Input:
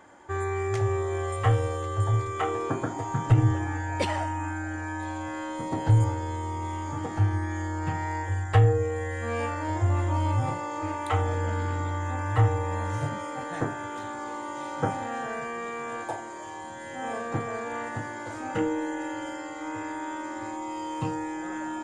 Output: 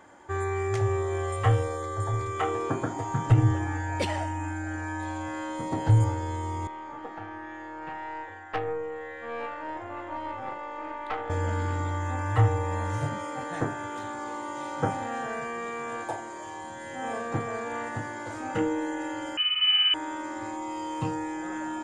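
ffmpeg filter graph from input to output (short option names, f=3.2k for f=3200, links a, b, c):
-filter_complex "[0:a]asettb=1/sr,asplit=3[a][b][c];[a]atrim=end=1.634[d];[b]atrim=start=1.63:end=2.21,asetpts=PTS-STARTPTS,afade=t=in:d=0.004:c=qsin,afade=t=out:st=0.576:d=0.004:c=qsin,asuperstop=centerf=2800:order=8:qfactor=3.5,equalizer=f=72:t=o:w=2.4:g=-6.5[e];[c]atrim=start=2.206[f];[d][e]acrossfade=d=0.004:c1=hsin:c2=qsin[g];[g][f]acrossfade=d=0.004:c1=qsin:c2=hsin,asettb=1/sr,asplit=3[h][i][j];[h]atrim=end=3.994[k];[i]atrim=start=3.99:end=4.67,asetpts=PTS-STARTPTS,afade=t=in:d=0.004:c=qsin,afade=t=out:st=0.676:d=0.004:c=qsin,equalizer=f=1.2k:w=2:g=-5.5,asoftclip=type=hard:threshold=-19.5dB[l];[j]atrim=start=4.666[m];[k][l]acrossfade=d=0.004:c1=hsin:c2=qsin[n];[n][m]acrossfade=d=0.004:c1=qsin:c2=hsin,asettb=1/sr,asplit=3[o][p][q];[o]atrim=end=6.674[r];[p]atrim=start=6.67:end=11.3,asetpts=PTS-STARTPTS,afade=t=in:d=0.004:c=qsin,afade=t=out:st=4.626:d=0.004:c=qsin,highpass=390,lowpass=2.8k,aeval=exprs='(tanh(11.2*val(0)+0.65)-tanh(0.65))/11.2':c=same[s];[q]atrim=start=11.296[t];[r][s]acrossfade=d=0.004:c1=hsin:c2=qsin[u];[u][t]acrossfade=d=0.004:c1=qsin:c2=hsin,asettb=1/sr,asplit=3[v][w][x];[v]atrim=end=19.374[y];[w]atrim=start=19.37:end=19.94,asetpts=PTS-STARTPTS,afade=t=in:d=0.004:c=qsin,afade=t=out:st=0.566:d=0.004:c=qsin,highpass=f=300:t=q:w=3.6,lowpass=f=2.8k:t=q:w=0.5098,lowpass=f=2.8k:t=q:w=0.6013,lowpass=f=2.8k:t=q:w=0.9,lowpass=f=2.8k:t=q:w=2.563,afreqshift=-3300,aecho=1:1:2.4:0.69,atrim=end_sample=25137[z];[x]atrim=start=19.936[aa];[y][z]acrossfade=d=0.004:c1=hsin:c2=qsin[ab];[ab][aa]acrossfade=d=0.004:c1=qsin:c2=hsin"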